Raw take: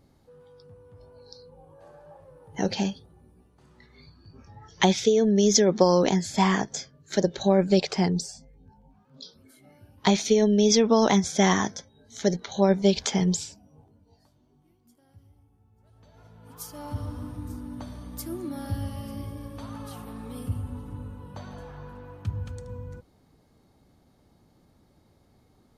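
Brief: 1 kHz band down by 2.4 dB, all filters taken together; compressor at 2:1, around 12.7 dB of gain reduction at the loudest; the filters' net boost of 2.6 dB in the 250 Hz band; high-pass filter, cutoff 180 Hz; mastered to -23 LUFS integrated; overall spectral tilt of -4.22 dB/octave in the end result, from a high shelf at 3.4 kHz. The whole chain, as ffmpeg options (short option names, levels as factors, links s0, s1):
-af "highpass=180,equalizer=f=250:t=o:g=6.5,equalizer=f=1000:t=o:g=-4,highshelf=f=3400:g=5.5,acompressor=threshold=0.0126:ratio=2,volume=3.98"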